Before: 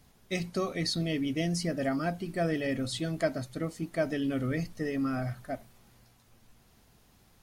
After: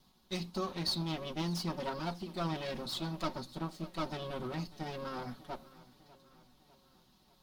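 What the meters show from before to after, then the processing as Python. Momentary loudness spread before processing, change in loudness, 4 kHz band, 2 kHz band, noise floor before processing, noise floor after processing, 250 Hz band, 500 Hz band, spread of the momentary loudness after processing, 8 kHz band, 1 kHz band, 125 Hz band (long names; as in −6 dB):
6 LU, −6.5 dB, −1.0 dB, −9.0 dB, −63 dBFS, −67 dBFS, −8.5 dB, −8.0 dB, 8 LU, −7.5 dB, −0.5 dB, −6.0 dB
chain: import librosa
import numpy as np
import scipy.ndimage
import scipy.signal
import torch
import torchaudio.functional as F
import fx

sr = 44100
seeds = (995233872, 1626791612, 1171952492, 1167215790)

y = fx.lower_of_two(x, sr, delay_ms=5.4)
y = fx.graphic_eq(y, sr, hz=(125, 250, 500, 1000, 2000, 4000, 8000), db=(-3, 5, -4, 7, -7, 11, -5))
y = fx.echo_feedback(y, sr, ms=598, feedback_pct=54, wet_db=-19.5)
y = y * librosa.db_to_amplitude(-6.0)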